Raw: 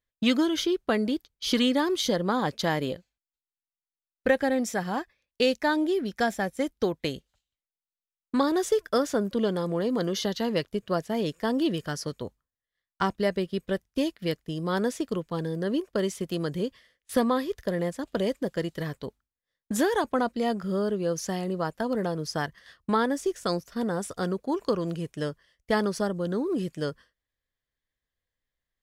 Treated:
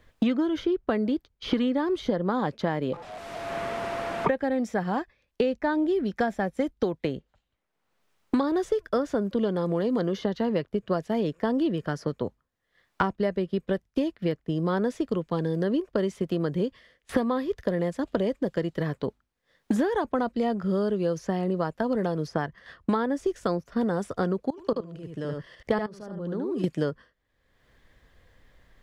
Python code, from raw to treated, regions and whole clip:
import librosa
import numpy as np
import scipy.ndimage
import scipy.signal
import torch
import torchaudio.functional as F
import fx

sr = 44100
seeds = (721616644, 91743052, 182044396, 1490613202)

y = fx.chain(x, sr, fx.delta_mod(bps=64000, step_db=-36.5),
    fx.high_shelf(hz=5700.0, db=-9.0),
    fx.ring_mod(carrier_hz=680.0), at=(2.93, 4.29))
y = fx.chain(y, sr, fx.level_steps(step_db=24),
    fx.echo_single(ms=76, db=-5.5), at=(24.5, 26.64))
y = fx.lowpass(y, sr, hz=1400.0, slope=6)
y = fx.band_squash(y, sr, depth_pct=100)
y = y * 10.0 ** (1.0 / 20.0)